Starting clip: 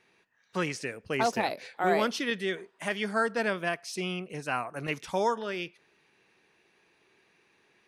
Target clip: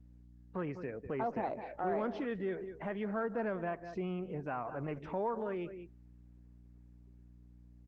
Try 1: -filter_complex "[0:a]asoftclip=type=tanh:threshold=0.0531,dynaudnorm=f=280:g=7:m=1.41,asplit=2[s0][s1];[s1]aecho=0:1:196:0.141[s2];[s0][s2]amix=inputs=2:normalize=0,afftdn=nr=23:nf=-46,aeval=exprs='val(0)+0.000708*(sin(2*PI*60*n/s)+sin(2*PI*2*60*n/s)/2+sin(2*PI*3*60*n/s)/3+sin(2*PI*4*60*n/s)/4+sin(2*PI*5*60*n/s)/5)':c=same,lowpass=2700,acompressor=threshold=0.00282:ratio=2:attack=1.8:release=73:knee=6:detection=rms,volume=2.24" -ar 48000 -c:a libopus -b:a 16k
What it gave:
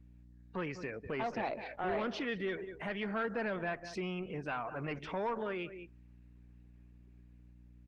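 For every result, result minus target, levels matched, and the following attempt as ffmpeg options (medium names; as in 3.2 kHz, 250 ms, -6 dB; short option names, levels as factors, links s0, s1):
saturation: distortion +10 dB; 2 kHz band +6.0 dB
-filter_complex "[0:a]asoftclip=type=tanh:threshold=0.133,dynaudnorm=f=280:g=7:m=1.41,asplit=2[s0][s1];[s1]aecho=0:1:196:0.141[s2];[s0][s2]amix=inputs=2:normalize=0,afftdn=nr=23:nf=-46,aeval=exprs='val(0)+0.000708*(sin(2*PI*60*n/s)+sin(2*PI*2*60*n/s)/2+sin(2*PI*3*60*n/s)/3+sin(2*PI*4*60*n/s)/4+sin(2*PI*5*60*n/s)/5)':c=same,lowpass=2700,acompressor=threshold=0.00282:ratio=2:attack=1.8:release=73:knee=6:detection=rms,volume=2.24" -ar 48000 -c:a libopus -b:a 16k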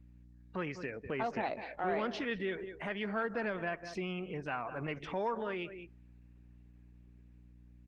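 2 kHz band +6.5 dB
-filter_complex "[0:a]asoftclip=type=tanh:threshold=0.133,dynaudnorm=f=280:g=7:m=1.41,asplit=2[s0][s1];[s1]aecho=0:1:196:0.141[s2];[s0][s2]amix=inputs=2:normalize=0,afftdn=nr=23:nf=-46,aeval=exprs='val(0)+0.000708*(sin(2*PI*60*n/s)+sin(2*PI*2*60*n/s)/2+sin(2*PI*3*60*n/s)/3+sin(2*PI*4*60*n/s)/4+sin(2*PI*5*60*n/s)/5)':c=same,lowpass=1100,acompressor=threshold=0.00282:ratio=2:attack=1.8:release=73:knee=6:detection=rms,volume=2.24" -ar 48000 -c:a libopus -b:a 16k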